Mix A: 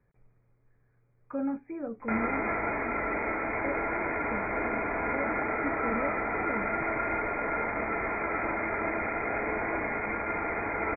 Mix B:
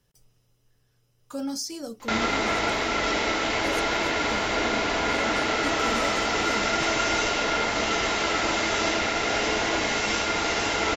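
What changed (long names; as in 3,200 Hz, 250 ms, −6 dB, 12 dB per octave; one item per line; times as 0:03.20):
background +5.0 dB
master: remove linear-phase brick-wall low-pass 2,500 Hz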